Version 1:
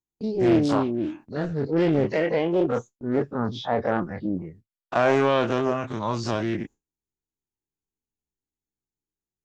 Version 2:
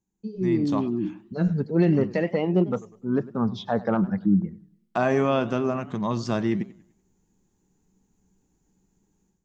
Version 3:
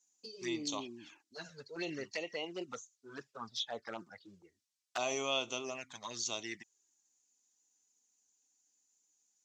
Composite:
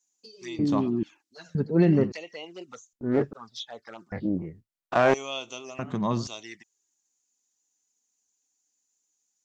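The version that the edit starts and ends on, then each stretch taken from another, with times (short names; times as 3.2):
3
0.59–1.03 from 2
1.55–2.12 from 2
2.93–3.33 from 1
4.12–5.14 from 1
5.79–6.27 from 2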